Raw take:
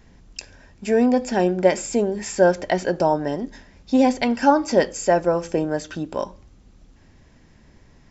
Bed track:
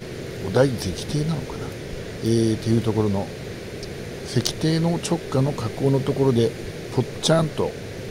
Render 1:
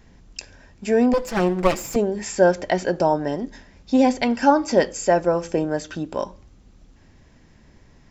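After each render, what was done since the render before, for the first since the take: 1.13–1.96 minimum comb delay 5.9 ms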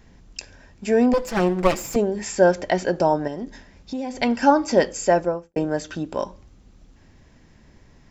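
3.27–4.2 compressor, threshold -26 dBFS; 5.13–5.56 studio fade out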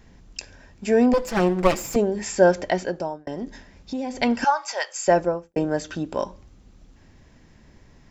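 2.62–3.27 fade out; 4.44–5.08 HPF 800 Hz 24 dB/oct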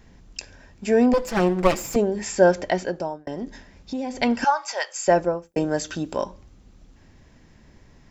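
5.42–6.17 high shelf 4300 Hz +9 dB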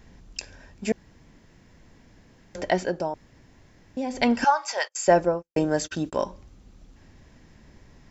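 0.92–2.55 room tone; 3.14–3.97 room tone; 4.77–6.24 gate -37 dBFS, range -35 dB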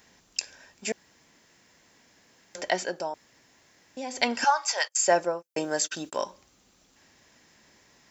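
HPF 760 Hz 6 dB/oct; high shelf 5500 Hz +10 dB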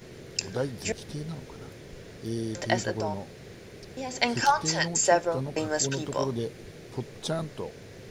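add bed track -12.5 dB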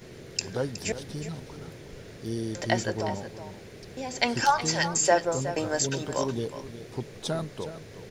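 echo 0.367 s -12 dB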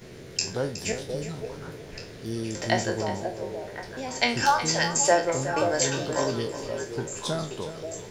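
spectral trails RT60 0.33 s; delay with a stepping band-pass 0.53 s, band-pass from 480 Hz, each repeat 1.4 oct, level -3.5 dB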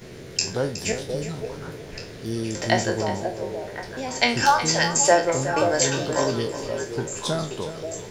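gain +3.5 dB

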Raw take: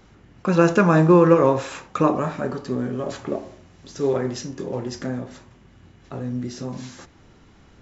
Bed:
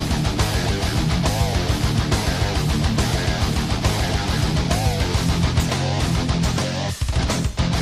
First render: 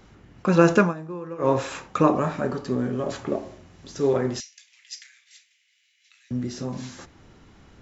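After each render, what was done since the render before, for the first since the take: 0.79–1.53 dip -21 dB, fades 0.15 s; 4.4–6.31 elliptic high-pass 2100 Hz, stop band 70 dB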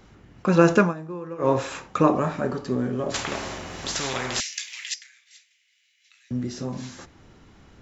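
3.14–4.94 spectral compressor 4:1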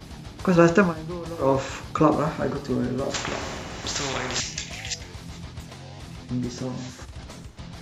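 add bed -19.5 dB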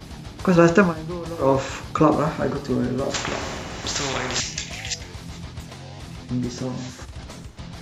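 gain +2.5 dB; limiter -2 dBFS, peak gain reduction 1.5 dB

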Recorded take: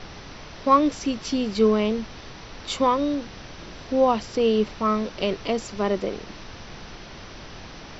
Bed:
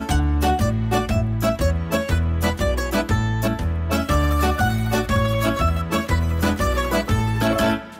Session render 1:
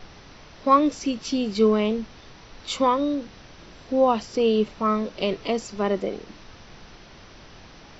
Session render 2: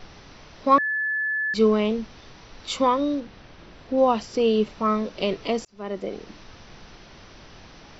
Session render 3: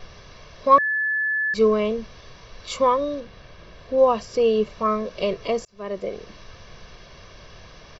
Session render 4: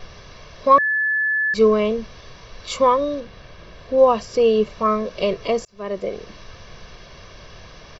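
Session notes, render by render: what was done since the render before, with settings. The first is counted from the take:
noise print and reduce 6 dB
0.78–1.54 bleep 1730 Hz -22.5 dBFS; 3.2–3.98 air absorption 120 m; 5.65–6.24 fade in
comb 1.8 ms, depth 56%; dynamic EQ 3600 Hz, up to -4 dB, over -39 dBFS, Q 0.93
gain +3 dB; limiter -3 dBFS, peak gain reduction 2.5 dB

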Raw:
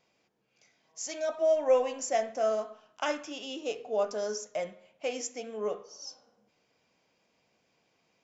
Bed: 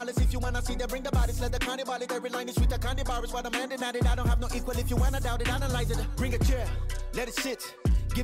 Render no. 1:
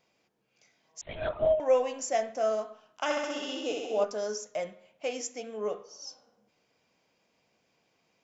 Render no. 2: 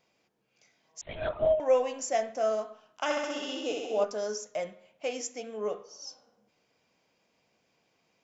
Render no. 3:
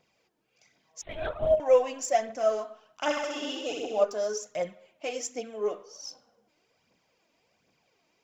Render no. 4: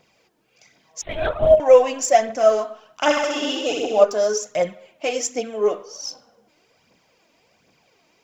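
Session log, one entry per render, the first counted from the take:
1.01–1.6 LPC vocoder at 8 kHz whisper; 3.04–4.04 flutter echo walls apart 11.1 m, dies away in 1.3 s
nothing audible
phaser 1.3 Hz, delay 3.5 ms, feedback 50%
gain +10 dB; limiter -3 dBFS, peak gain reduction 1.5 dB

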